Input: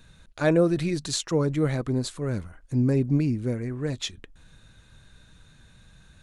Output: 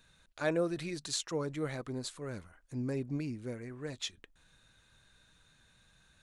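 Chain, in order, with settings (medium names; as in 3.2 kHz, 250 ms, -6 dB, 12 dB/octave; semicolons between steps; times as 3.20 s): bass shelf 350 Hz -10 dB; trim -6.5 dB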